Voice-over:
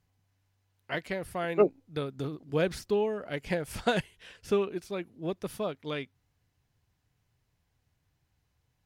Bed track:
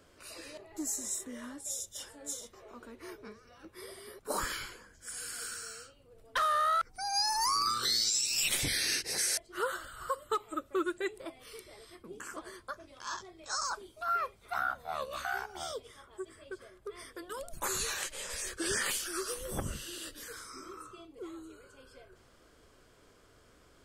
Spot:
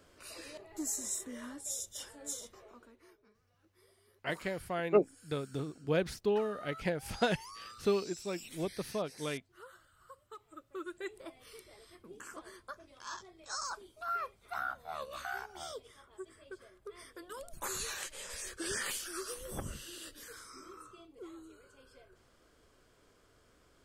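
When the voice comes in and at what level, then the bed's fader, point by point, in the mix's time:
3.35 s, -3.0 dB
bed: 2.56 s -1 dB
3.23 s -20 dB
10.25 s -20 dB
11.18 s -4.5 dB

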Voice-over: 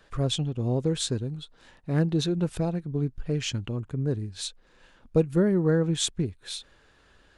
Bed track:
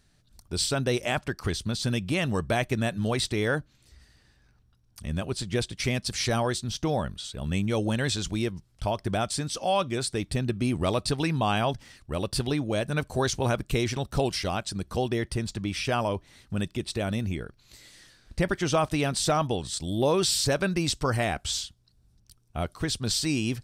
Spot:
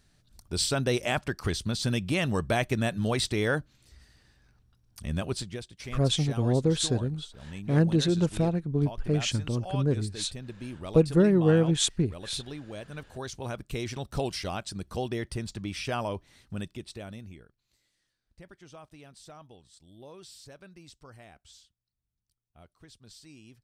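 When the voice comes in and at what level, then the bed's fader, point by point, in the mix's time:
5.80 s, +1.5 dB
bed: 5.37 s -0.5 dB
5.61 s -13 dB
13.12 s -13 dB
14.13 s -4.5 dB
16.45 s -4.5 dB
17.96 s -24.5 dB

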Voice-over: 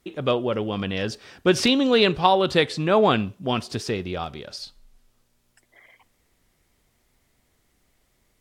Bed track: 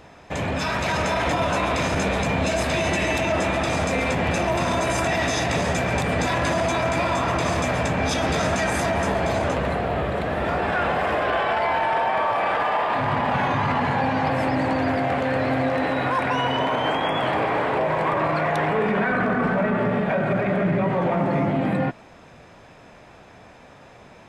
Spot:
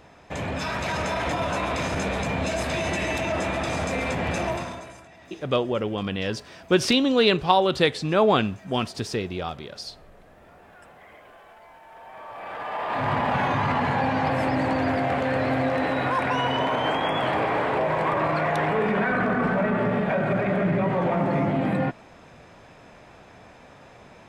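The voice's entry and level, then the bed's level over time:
5.25 s, -1.0 dB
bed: 4.5 s -4 dB
5.08 s -27.5 dB
11.82 s -27.5 dB
13.07 s -1.5 dB

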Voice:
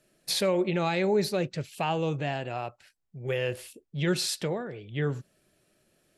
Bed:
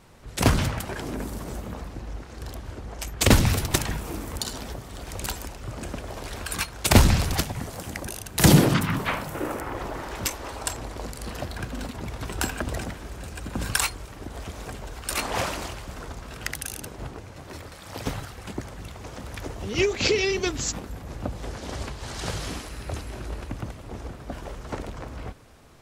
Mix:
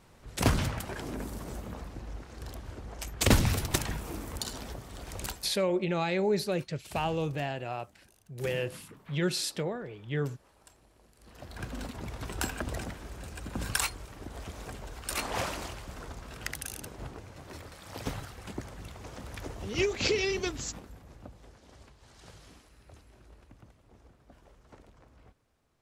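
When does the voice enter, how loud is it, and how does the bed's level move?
5.15 s, -2.5 dB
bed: 5.27 s -5.5 dB
5.63 s -28.5 dB
11.09 s -28.5 dB
11.64 s -5.5 dB
20.39 s -5.5 dB
21.63 s -21.5 dB

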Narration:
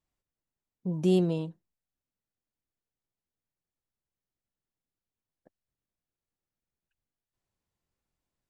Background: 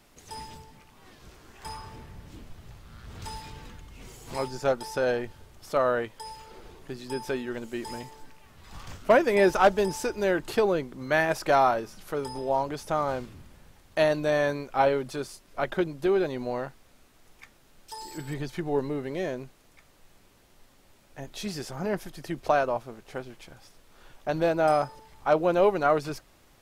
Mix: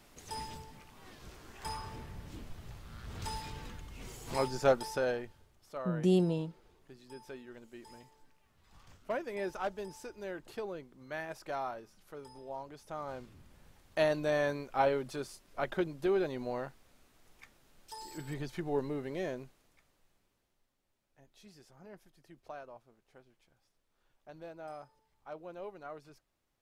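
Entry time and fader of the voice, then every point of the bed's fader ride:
5.00 s, -3.0 dB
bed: 4.76 s -1 dB
5.62 s -16.5 dB
12.79 s -16.5 dB
13.67 s -6 dB
19.31 s -6 dB
20.74 s -23 dB

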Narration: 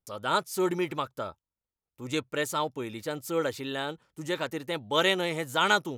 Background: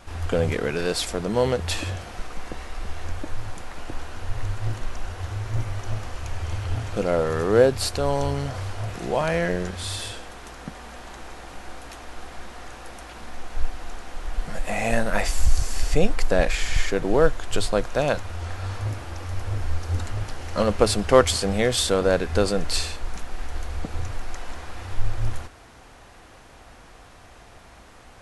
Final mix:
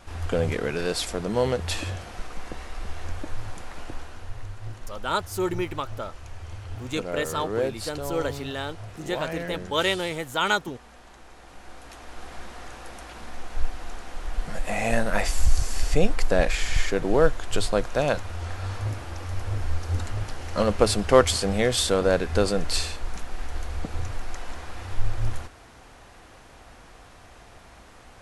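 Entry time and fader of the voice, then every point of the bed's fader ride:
4.80 s, +0.5 dB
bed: 3.81 s -2 dB
4.49 s -9.5 dB
11.27 s -9.5 dB
12.33 s -1 dB

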